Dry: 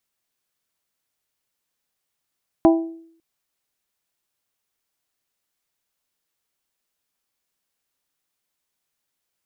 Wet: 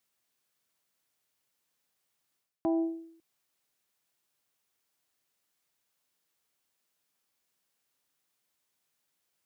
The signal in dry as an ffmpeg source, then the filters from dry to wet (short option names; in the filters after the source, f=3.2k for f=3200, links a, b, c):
-f lavfi -i "aevalsrc='0.376*pow(10,-3*t/0.63)*sin(2*PI*329*t)+0.211*pow(10,-3*t/0.388)*sin(2*PI*658*t)+0.119*pow(10,-3*t/0.341)*sin(2*PI*789.6*t)+0.0668*pow(10,-3*t/0.292)*sin(2*PI*987*t)':d=0.55:s=44100"
-af "highpass=82,areverse,acompressor=threshold=-27dB:ratio=10,areverse"